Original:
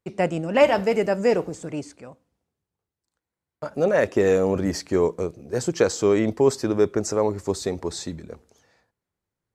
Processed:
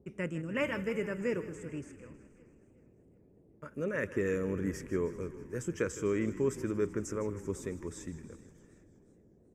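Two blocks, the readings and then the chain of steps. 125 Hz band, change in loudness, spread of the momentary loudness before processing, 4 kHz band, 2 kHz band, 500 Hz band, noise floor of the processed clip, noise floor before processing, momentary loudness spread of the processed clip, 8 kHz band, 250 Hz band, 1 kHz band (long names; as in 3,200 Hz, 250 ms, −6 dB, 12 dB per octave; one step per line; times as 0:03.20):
−8.5 dB, −12.5 dB, 14 LU, −17.0 dB, −8.5 dB, −14.0 dB, −63 dBFS, below −85 dBFS, 14 LU, −13.0 dB, −10.0 dB, −18.0 dB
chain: phaser with its sweep stopped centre 1,800 Hz, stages 4
noise in a band 43–430 Hz −54 dBFS
echo with shifted repeats 158 ms, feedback 65%, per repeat −30 Hz, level −15 dB
feedback echo with a swinging delay time 377 ms, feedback 46%, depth 55 cents, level −21 dB
level −8.5 dB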